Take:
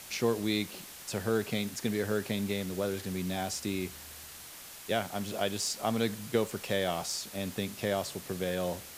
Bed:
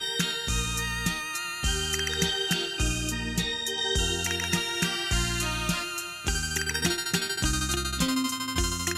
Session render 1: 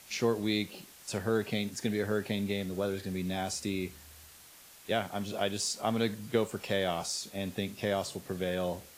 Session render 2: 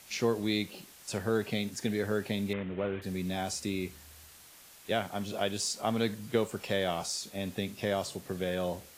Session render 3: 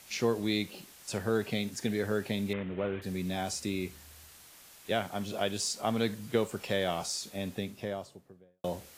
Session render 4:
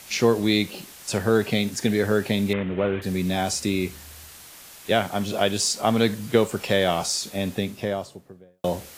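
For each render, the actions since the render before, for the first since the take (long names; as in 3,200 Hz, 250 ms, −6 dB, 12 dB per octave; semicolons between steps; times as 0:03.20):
noise reduction from a noise print 7 dB
0:02.53–0:03.02: variable-slope delta modulation 16 kbit/s
0:07.29–0:08.64: fade out and dull
level +9.5 dB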